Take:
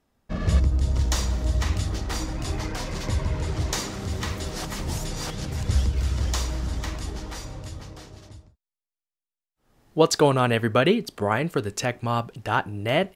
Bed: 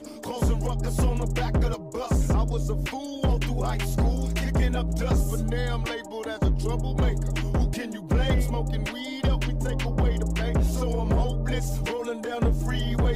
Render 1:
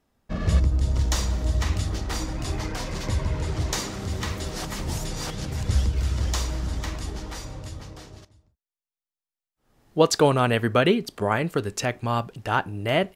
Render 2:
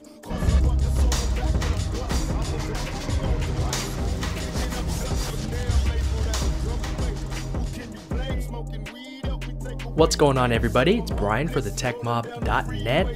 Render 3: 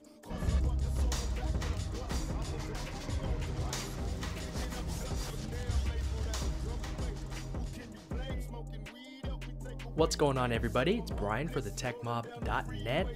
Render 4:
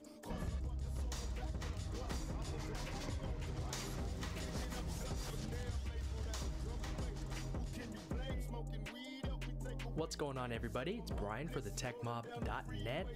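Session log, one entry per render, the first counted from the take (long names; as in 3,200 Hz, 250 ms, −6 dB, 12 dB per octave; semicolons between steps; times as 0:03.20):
0:08.25–0:09.98: fade in, from −15 dB
mix in bed −5 dB
level −10.5 dB
downward compressor 5 to 1, threshold −39 dBFS, peak gain reduction 15 dB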